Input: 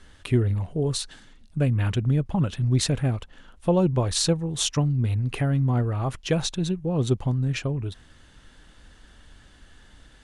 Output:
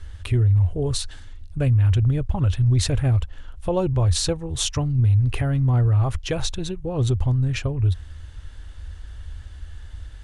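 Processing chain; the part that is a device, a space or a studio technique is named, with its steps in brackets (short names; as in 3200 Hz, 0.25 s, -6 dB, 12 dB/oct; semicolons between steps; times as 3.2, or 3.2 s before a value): car stereo with a boomy subwoofer (resonant low shelf 120 Hz +12 dB, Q 3; limiter -14 dBFS, peak gain reduction 9 dB); gain +1.5 dB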